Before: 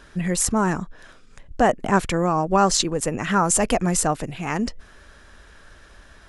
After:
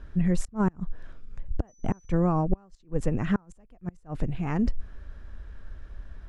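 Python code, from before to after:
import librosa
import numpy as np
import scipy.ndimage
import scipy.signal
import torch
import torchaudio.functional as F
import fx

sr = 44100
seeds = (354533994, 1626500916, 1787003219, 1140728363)

y = fx.gate_flip(x, sr, shuts_db=-10.0, range_db=-34)
y = fx.dmg_tone(y, sr, hz=6000.0, level_db=-43.0, at=(1.67, 2.11), fade=0.02)
y = fx.riaa(y, sr, side='playback')
y = F.gain(torch.from_numpy(y), -8.0).numpy()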